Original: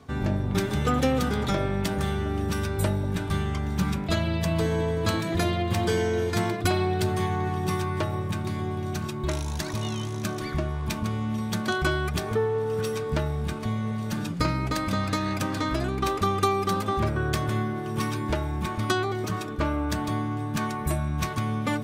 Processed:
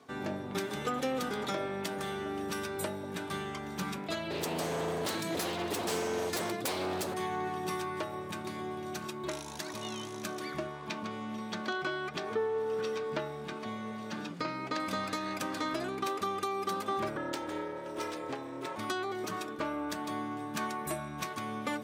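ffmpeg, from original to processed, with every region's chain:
-filter_complex "[0:a]asettb=1/sr,asplit=3[a][b][c];[a]atrim=end=4.304[d];[b]atrim=start=4.3:end=7.14,asetpts=PTS-STARTPTS,afade=t=in:d=0.004:c=qsin,afade=t=out:st=2.836:d=0.004:c=qsin,bass=f=250:g=7,treble=f=4k:g=8,aeval=exprs='0.112*(abs(mod(val(0)/0.112+3,4)-2)-1)':c=same[e];[c]atrim=start=7.136[f];[d][e]acrossfade=d=0.004:c1=hsin:c2=qsin[g];[g][f]acrossfade=d=0.004:c1=qsin:c2=hsin,asettb=1/sr,asplit=3[h][i][j];[h]atrim=end=10.674[k];[i]atrim=start=10.67:end=14.8,asetpts=PTS-STARTPTS,afade=t=in:d=0.004:c=qsin,afade=t=out:st=4.126:d=0.004:c=qsin,acrossover=split=5900[l][m];[m]acompressor=threshold=-59dB:ratio=4:attack=1:release=60[n];[l][n]amix=inputs=2:normalize=0,highpass=100,equalizer=f=11k:t=o:w=0.81:g=-3[o];[j]atrim=start=14.796[p];[k][o]acrossfade=d=0.004:c1=hsin:c2=qsin[q];[q][p]acrossfade=d=0.004:c1=qsin:c2=hsin,asettb=1/sr,asplit=3[r][s][t];[r]atrim=end=17.174[u];[s]atrim=start=17.17:end=18.76,asetpts=PTS-STARTPTS,afade=t=in:d=0.004:c=qsin,afade=t=out:st=1.586:d=0.004:c=qsin,equalizer=f=12k:w=3.5:g=-14.5,aeval=exprs='val(0)*sin(2*PI*200*n/s)':c=same[v];[t]atrim=start=18.756[w];[u][v]acrossfade=d=0.004:c1=hsin:c2=qsin[x];[x][w]acrossfade=d=0.004:c1=qsin:c2=hsin,highpass=280,alimiter=limit=-18.5dB:level=0:latency=1:release=342,volume=-4dB"

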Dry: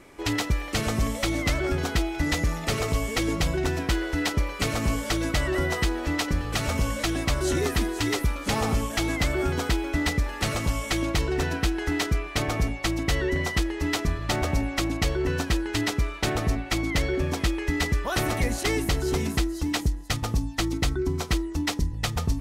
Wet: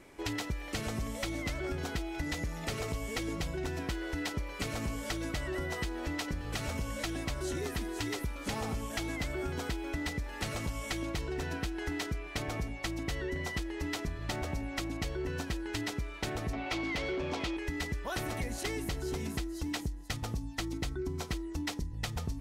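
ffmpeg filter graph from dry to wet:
-filter_complex "[0:a]asettb=1/sr,asplit=3[a][b][c];[a]atrim=end=16.534[d];[b]atrim=start=16.53:end=17.57,asetpts=PTS-STARTPTS,afade=t=in:d=0.004:c=qsin,afade=t=out:st=1.036:d=0.004:c=qsin,lowpass=5.2k,equalizer=f=1.7k:t=o:w=0.38:g=-10,asplit=2[e][f];[f]highpass=f=720:p=1,volume=19dB,asoftclip=type=tanh:threshold=-15dB[g];[e][g]amix=inputs=2:normalize=0,lowpass=f=3.6k:p=1,volume=-6dB[h];[c]atrim=start=17.566[i];[d][h]acrossfade=d=0.004:c1=hsin:c2=qsin[j];[j][i]acrossfade=d=0.004:c1=qsin:c2=hsin,bandreject=f=1.2k:w=17,acompressor=threshold=-27dB:ratio=6,volume=-5dB"

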